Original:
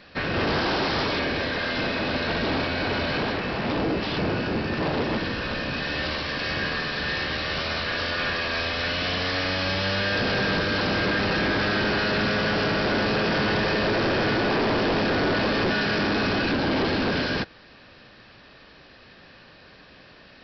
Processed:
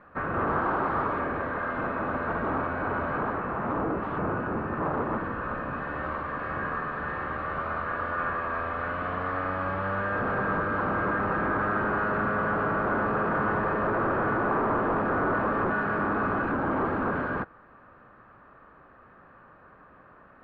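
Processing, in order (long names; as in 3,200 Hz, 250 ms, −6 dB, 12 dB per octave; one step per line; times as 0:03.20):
transistor ladder low-pass 1,400 Hz, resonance 60%
level +5.5 dB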